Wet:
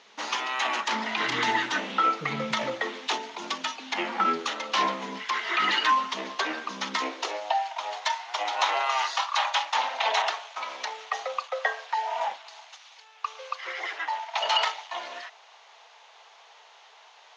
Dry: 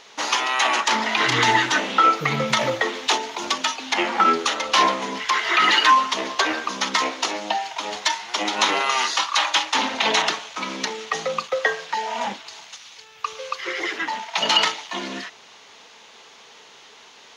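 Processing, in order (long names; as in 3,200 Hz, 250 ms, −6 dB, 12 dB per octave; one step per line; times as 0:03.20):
low-shelf EQ 360 Hz −7 dB
high-pass filter sweep 180 Hz → 700 Hz, 0:06.89–0:07.48
high-frequency loss of the air 74 metres
level −6.5 dB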